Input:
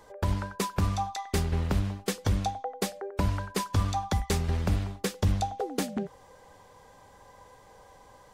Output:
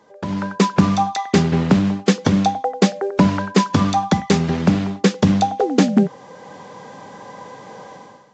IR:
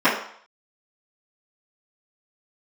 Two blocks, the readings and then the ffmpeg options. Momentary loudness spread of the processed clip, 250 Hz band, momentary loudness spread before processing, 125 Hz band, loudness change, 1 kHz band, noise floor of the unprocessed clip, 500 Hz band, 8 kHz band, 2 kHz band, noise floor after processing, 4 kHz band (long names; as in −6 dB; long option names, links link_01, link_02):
14 LU, +18.0 dB, 5 LU, +8.0 dB, +12.5 dB, +12.5 dB, −55 dBFS, +13.5 dB, +7.0 dB, +12.0 dB, −43 dBFS, +11.0 dB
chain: -af "highpass=frequency=180:width=0.5412,highpass=frequency=180:width=1.3066,bass=frequency=250:gain=12,treble=frequency=4000:gain=-3,dynaudnorm=framelen=110:gausssize=7:maxgain=16dB" -ar 16000 -c:a pcm_mulaw